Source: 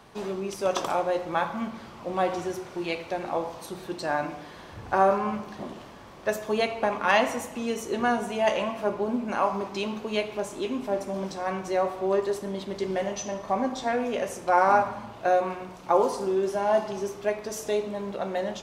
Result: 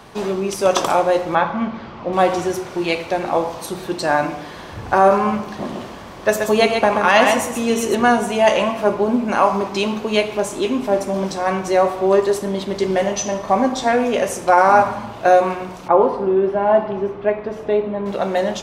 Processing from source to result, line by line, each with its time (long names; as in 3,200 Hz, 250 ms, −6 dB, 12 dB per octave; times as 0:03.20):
0:01.35–0:02.13: high-frequency loss of the air 180 metres
0:05.49–0:07.95: single-tap delay 130 ms −6 dB
0:15.88–0:18.06: high-frequency loss of the air 490 metres
whole clip: dynamic equaliser 9,200 Hz, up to +3 dB, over −48 dBFS, Q 0.86; boost into a limiter +11 dB; level −1 dB